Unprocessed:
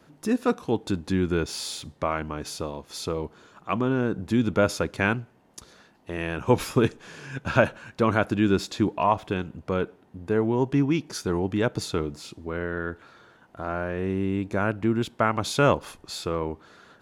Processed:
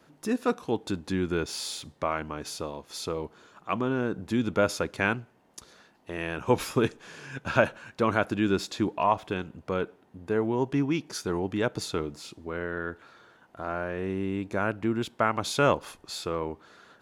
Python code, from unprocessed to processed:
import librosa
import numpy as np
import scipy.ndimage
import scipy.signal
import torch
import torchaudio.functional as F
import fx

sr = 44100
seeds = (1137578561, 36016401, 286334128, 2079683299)

y = fx.low_shelf(x, sr, hz=230.0, db=-5.5)
y = y * librosa.db_to_amplitude(-1.5)